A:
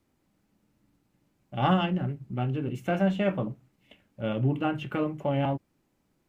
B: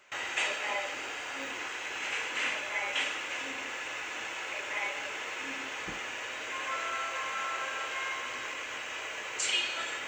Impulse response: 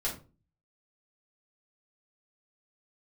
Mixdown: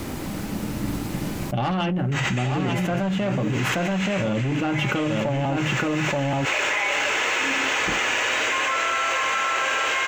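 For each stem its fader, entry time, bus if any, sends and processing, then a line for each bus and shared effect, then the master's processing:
+1.5 dB, 0.00 s, no send, echo send -7 dB, soft clip -22.5 dBFS, distortion -13 dB
-8.5 dB, 2.00 s, no send, no echo send, dry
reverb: off
echo: echo 0.878 s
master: fast leveller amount 100%

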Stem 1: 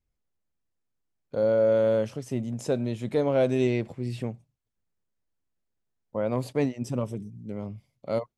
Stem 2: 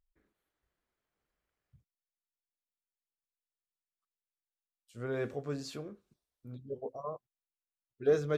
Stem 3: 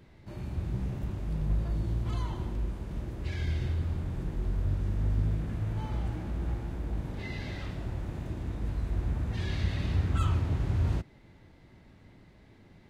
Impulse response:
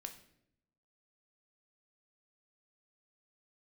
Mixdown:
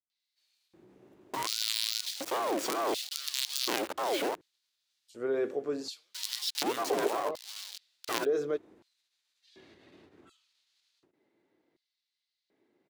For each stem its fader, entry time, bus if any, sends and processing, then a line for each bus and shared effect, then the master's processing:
-3.5 dB, 0.00 s, no send, band shelf 2000 Hz +11.5 dB 2.6 oct; companded quantiser 2-bit; ring modulator with a swept carrier 670 Hz, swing 40%, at 2.5 Hz
+1.0 dB, 0.20 s, no send, limiter -28.5 dBFS, peak gain reduction 10.5 dB
-16.5 dB, 0.10 s, no send, compressor 4:1, threshold -30 dBFS, peak gain reduction 7 dB; ending taper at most 160 dB/s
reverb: off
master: LFO high-pass square 0.68 Hz 350–4200 Hz; limiter -12.5 dBFS, peak gain reduction 11 dB

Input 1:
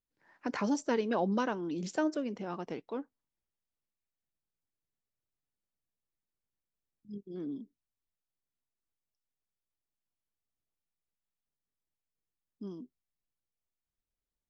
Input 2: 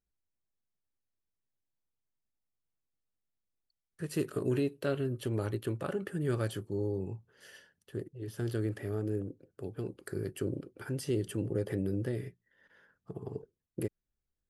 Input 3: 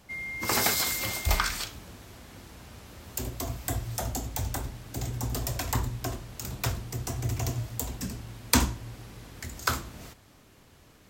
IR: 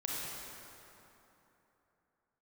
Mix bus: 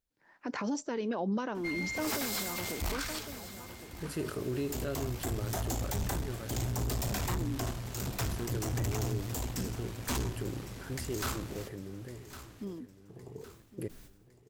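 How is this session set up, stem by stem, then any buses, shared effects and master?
+1.5 dB, 0.00 s, no send, echo send -16 dB, dry
-3.5 dB, 0.00 s, no send, echo send -21.5 dB, sustainer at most 98 dB/s; auto duck -12 dB, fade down 1.80 s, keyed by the first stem
+3.0 dB, 1.55 s, no send, echo send -16.5 dB, vocal rider 2 s; tube stage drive 31 dB, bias 0.7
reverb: off
echo: feedback echo 1.109 s, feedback 41%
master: limiter -25.5 dBFS, peak gain reduction 8.5 dB

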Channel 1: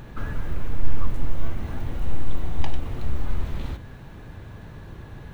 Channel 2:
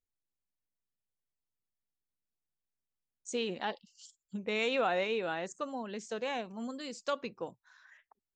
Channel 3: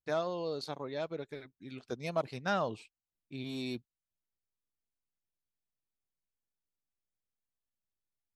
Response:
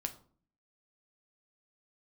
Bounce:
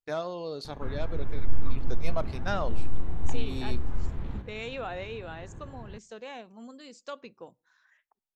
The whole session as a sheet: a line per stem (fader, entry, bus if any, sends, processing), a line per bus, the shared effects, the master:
-5.0 dB, 0.65 s, send -19.5 dB, LPF 1300 Hz 6 dB/oct; notch 590 Hz, Q 12
-6.5 dB, 0.00 s, send -21 dB, dry
-1.5 dB, 0.00 s, send -10 dB, gate with hold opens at -47 dBFS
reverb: on, RT60 0.45 s, pre-delay 7 ms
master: dry

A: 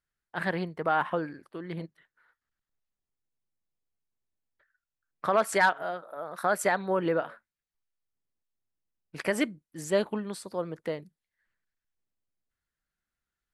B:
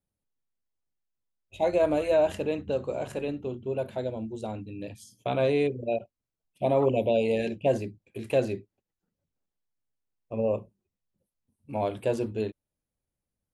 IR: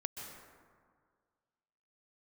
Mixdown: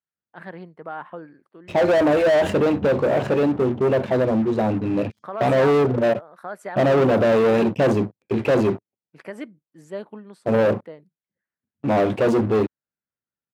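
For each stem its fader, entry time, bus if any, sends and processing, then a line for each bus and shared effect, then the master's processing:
-6.0 dB, 0.00 s, no send, dry
0.0 dB, 0.15 s, no send, low-pass opened by the level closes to 2500 Hz, open at -20.5 dBFS; sample leveller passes 5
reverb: off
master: HPF 120 Hz 12 dB/oct; high shelf 2800 Hz -12 dB

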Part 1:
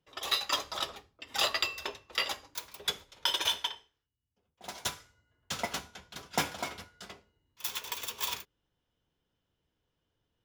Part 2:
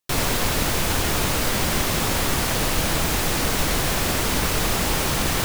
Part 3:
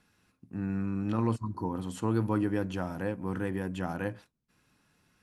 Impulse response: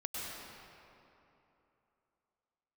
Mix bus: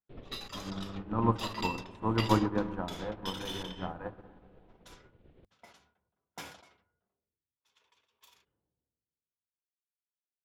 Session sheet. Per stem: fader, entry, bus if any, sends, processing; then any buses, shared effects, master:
-2.5 dB, 0.00 s, no send, HPF 51 Hz; low-pass opened by the level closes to 450 Hz, open at -30 dBFS; sustainer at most 35 dB/s
-18.0 dB, 0.00 s, no send, steep low-pass 3500 Hz; resonant low shelf 690 Hz +13.5 dB, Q 1.5; auto duck -8 dB, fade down 0.55 s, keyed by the third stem
+0.5 dB, 0.00 s, send -4.5 dB, EQ curve 410 Hz 0 dB, 1000 Hz +7 dB, 4200 Hz -17 dB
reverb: on, RT60 3.1 s, pre-delay 93 ms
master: notches 50/100/150/200/250/300 Hz; upward expander 2.5:1, over -44 dBFS

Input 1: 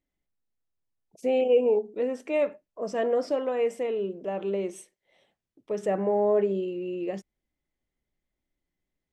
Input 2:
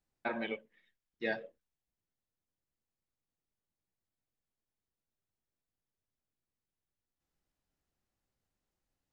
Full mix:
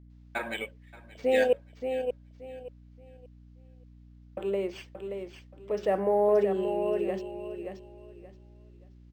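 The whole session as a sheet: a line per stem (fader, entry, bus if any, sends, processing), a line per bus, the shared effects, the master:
+2.0 dB, 0.00 s, muted 1.53–4.37, no send, echo send -7 dB, dry
+2.5 dB, 0.10 s, no send, echo send -19.5 dB, high shelf 2700 Hz +12 dB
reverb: off
echo: feedback echo 0.577 s, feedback 25%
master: HPF 360 Hz 6 dB/oct; hum 60 Hz, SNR 20 dB; decimation joined by straight lines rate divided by 4×

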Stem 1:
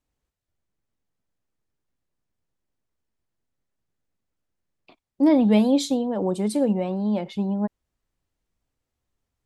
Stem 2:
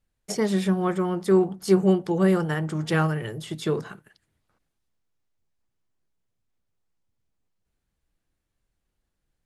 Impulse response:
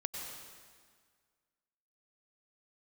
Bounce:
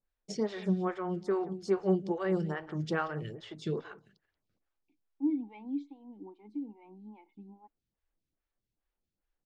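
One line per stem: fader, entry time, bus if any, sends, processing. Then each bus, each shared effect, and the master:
-9.0 dB, 0.00 s, no send, no echo send, vowel filter u
-6.0 dB, 0.00 s, no send, echo send -17.5 dB, dry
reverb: off
echo: echo 0.18 s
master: LPF 6100 Hz 24 dB/oct; photocell phaser 2.4 Hz

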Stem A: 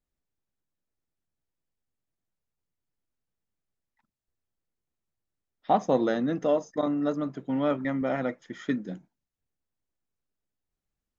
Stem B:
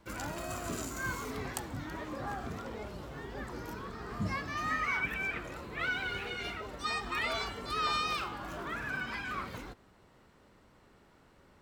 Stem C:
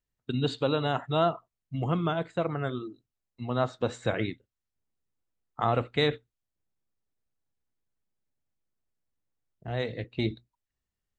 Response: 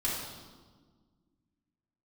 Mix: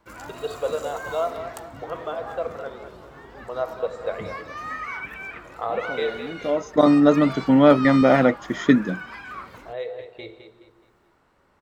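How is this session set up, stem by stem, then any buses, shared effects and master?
+1.0 dB, 0.00 s, no send, no echo send, AGC gain up to 13 dB; auto duck -22 dB, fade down 0.85 s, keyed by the third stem
-4.5 dB, 0.00 s, no send, no echo send, EQ curve 200 Hz 0 dB, 1100 Hz +7 dB, 3500 Hz +1 dB
-4.5 dB, 0.00 s, send -13 dB, echo send -9 dB, reverb removal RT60 1.5 s; LPF 3200 Hz 6 dB/oct; resonant low shelf 330 Hz -13.5 dB, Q 3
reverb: on, RT60 1.5 s, pre-delay 3 ms
echo: feedback echo 0.211 s, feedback 37%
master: dry

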